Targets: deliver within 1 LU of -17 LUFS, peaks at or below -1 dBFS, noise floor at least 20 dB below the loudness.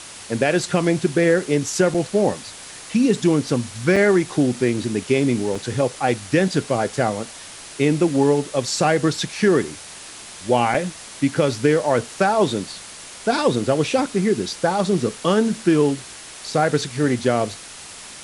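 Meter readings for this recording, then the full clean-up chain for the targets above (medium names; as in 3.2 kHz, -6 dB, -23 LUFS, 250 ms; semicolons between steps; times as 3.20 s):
dropouts 4; longest dropout 4.3 ms; noise floor -39 dBFS; noise floor target -41 dBFS; loudness -20.5 LUFS; peak level -5.5 dBFS; loudness target -17.0 LUFS
-> interpolate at 1.94/3.96/5.55/10.74 s, 4.3 ms; noise reduction 6 dB, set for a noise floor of -39 dBFS; trim +3.5 dB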